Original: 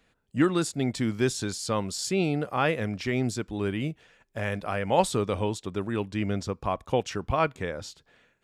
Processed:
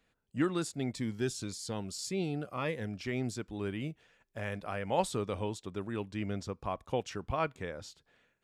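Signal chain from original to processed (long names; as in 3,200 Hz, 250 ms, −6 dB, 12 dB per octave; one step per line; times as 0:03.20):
0:00.92–0:03.04: phaser whose notches keep moving one way falling 1.8 Hz
level −7.5 dB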